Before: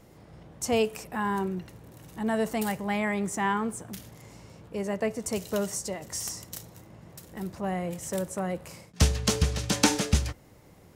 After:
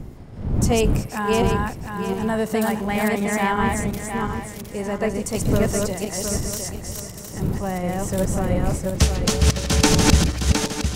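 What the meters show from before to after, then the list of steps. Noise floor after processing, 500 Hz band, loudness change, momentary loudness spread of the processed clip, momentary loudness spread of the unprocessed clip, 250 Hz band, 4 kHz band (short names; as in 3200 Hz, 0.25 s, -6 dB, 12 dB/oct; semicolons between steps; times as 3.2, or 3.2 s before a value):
-36 dBFS, +7.5 dB, +7.5 dB, 10 LU, 21 LU, +8.5 dB, +7.0 dB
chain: regenerating reverse delay 0.356 s, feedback 54%, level -1 dB; wind noise 160 Hz -31 dBFS; gain +4 dB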